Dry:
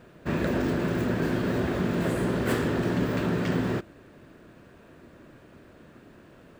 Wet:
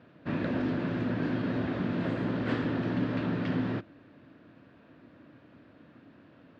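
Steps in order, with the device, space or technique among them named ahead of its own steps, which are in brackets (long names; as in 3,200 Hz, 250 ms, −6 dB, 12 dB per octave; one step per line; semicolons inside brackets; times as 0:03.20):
guitar cabinet (loudspeaker in its box 97–4,400 Hz, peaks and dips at 110 Hz +4 dB, 280 Hz +7 dB, 390 Hz −6 dB)
level −5 dB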